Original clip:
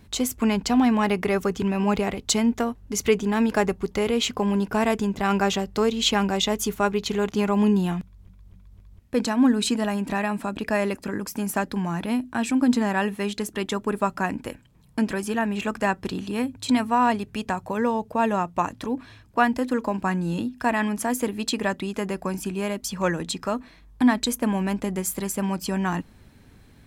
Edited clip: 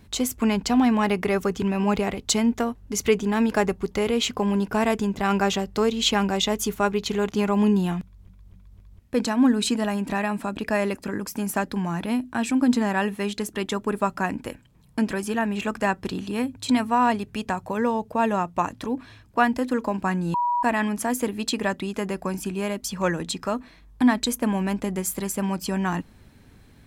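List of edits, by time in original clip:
0:20.34–0:20.63: beep over 967 Hz −20 dBFS

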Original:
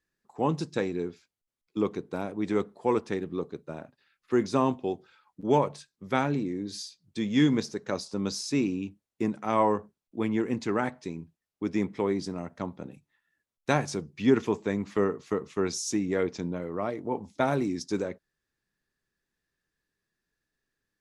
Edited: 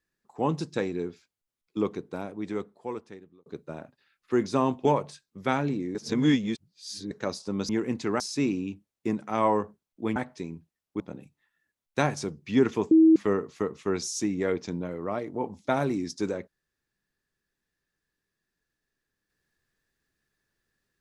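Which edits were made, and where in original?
0:01.82–0:03.46: fade out
0:04.85–0:05.51: remove
0:06.61–0:07.77: reverse
0:10.31–0:10.82: move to 0:08.35
0:11.66–0:12.71: remove
0:14.62–0:14.87: beep over 321 Hz −13 dBFS

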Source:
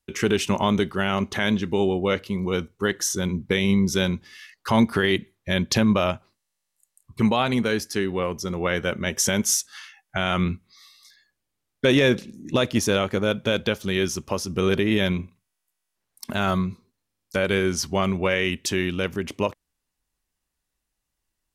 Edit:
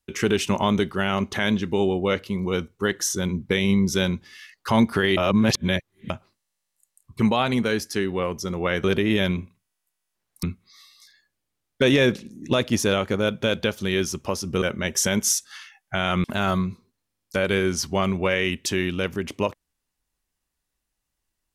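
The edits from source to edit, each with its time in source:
0:05.17–0:06.10: reverse
0:08.84–0:10.46: swap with 0:14.65–0:16.24

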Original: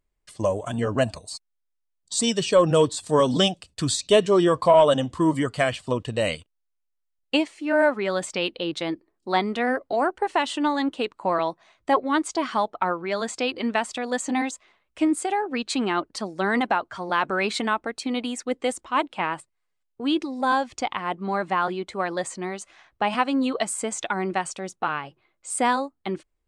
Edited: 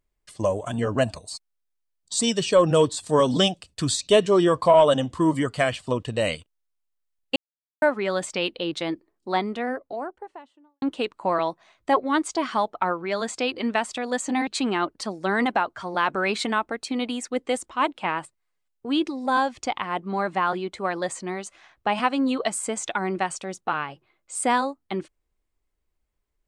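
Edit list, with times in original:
0:07.36–0:07.82: silence
0:08.90–0:10.82: fade out and dull
0:14.47–0:15.62: remove

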